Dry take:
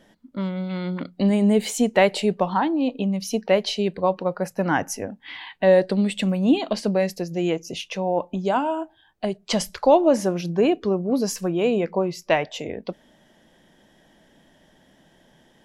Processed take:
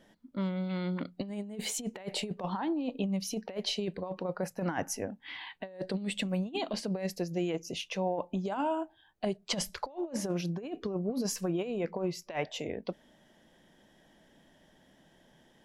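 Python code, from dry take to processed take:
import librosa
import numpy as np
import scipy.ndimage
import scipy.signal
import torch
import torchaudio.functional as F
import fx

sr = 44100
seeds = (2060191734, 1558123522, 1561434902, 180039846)

y = fx.over_compress(x, sr, threshold_db=-23.0, ratio=-0.5)
y = F.gain(torch.from_numpy(y), -9.0).numpy()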